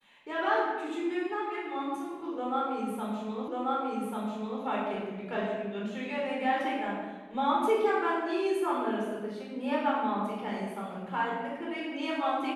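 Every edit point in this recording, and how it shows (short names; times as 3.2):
3.48 repeat of the last 1.14 s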